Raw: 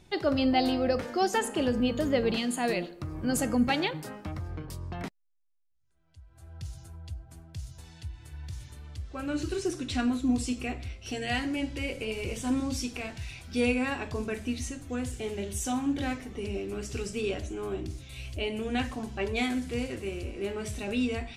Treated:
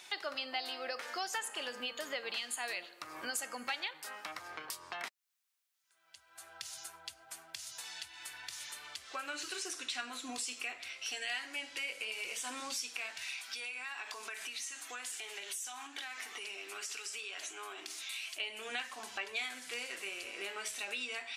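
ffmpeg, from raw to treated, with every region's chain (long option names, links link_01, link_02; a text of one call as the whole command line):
ffmpeg -i in.wav -filter_complex "[0:a]asettb=1/sr,asplit=3[link_01][link_02][link_03];[link_01]atrim=end=13.354[link_04];[link_02]atrim=start=13.35:end=18.4,asetpts=PTS-STARTPTS,afade=type=in:duration=0.004:curve=qsin,afade=type=out:start_time=5.046:duration=0.004:curve=qsin,highpass=360,equalizer=frequency=540:width=5:gain=-10.5,acompressor=threshold=-42dB:ratio=5:attack=3.2:release=140:knee=1:detection=peak[link_05];[link_03]atrim=start=18.396[link_06];[link_04][link_05]acrossfade=duration=0.004:curve1=hsin:curve2=qsin[link_07];[link_07][link_06]acrossfade=duration=0.004:curve1=qsin:curve2=hsin,highpass=1200,acompressor=threshold=-54dB:ratio=3,volume=12.5dB" out.wav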